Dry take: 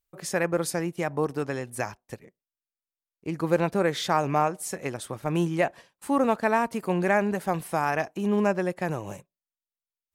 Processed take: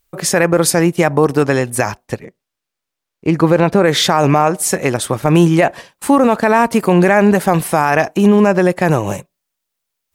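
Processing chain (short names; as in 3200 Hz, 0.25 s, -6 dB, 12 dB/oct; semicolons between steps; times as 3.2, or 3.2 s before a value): 2.05–3.83 high shelf 8800 Hz -> 6000 Hz -10 dB; maximiser +18 dB; gain -1 dB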